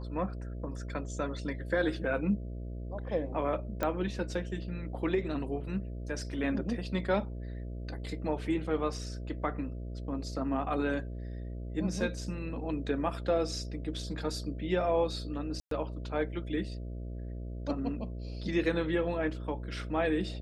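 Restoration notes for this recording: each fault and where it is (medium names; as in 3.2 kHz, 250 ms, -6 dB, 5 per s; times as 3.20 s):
buzz 60 Hz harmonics 11 -39 dBFS
3.83 s: pop -17 dBFS
15.60–15.71 s: dropout 113 ms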